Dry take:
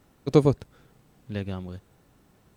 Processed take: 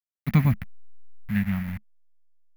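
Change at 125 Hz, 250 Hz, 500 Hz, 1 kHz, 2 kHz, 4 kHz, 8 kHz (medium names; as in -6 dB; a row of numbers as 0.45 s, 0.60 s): +4.5 dB, +1.5 dB, -20.0 dB, -2.5 dB, +9.5 dB, -4.0 dB, no reading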